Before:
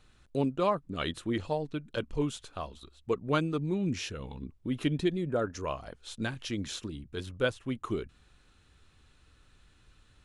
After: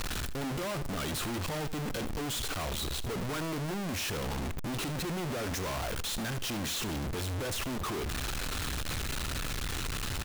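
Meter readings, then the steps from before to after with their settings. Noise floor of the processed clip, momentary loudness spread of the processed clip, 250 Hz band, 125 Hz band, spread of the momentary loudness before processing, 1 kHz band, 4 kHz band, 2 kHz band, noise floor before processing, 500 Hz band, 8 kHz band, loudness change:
-35 dBFS, 2 LU, -3.5 dB, +1.0 dB, 11 LU, -0.5 dB, +6.0 dB, +3.0 dB, -63 dBFS, -4.5 dB, +11.0 dB, -1.0 dB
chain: infinite clipping; on a send: echo 77 ms -15.5 dB

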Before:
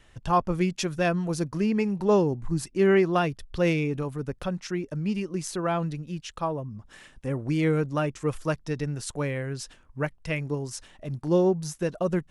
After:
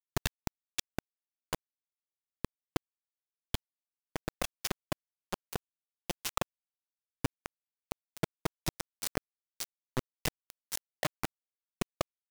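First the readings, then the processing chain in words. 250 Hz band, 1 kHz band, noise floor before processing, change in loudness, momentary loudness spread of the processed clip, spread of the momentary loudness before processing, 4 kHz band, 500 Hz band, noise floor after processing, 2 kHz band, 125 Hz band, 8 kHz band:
-17.0 dB, -12.5 dB, -57 dBFS, -12.5 dB, 9 LU, 12 LU, -2.0 dB, -18.0 dB, under -85 dBFS, -9.5 dB, -14.5 dB, -2.5 dB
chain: overloaded stage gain 29.5 dB; compressor 16:1, threshold -39 dBFS, peak gain reduction 9 dB; bit-crush 6-bit; gain +10 dB

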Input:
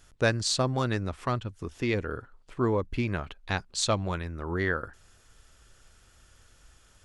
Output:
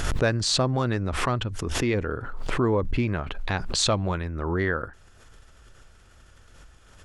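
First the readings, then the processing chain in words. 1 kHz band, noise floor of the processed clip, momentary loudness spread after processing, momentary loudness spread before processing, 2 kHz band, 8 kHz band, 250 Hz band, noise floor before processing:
+3.5 dB, -53 dBFS, 9 LU, 10 LU, +2.0 dB, +4.0 dB, +4.0 dB, -60 dBFS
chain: high shelf 3600 Hz -9 dB; in parallel at -1 dB: limiter -21.5 dBFS, peak gain reduction 10.5 dB; on the sum: backwards sustainer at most 33 dB/s; gain -1 dB

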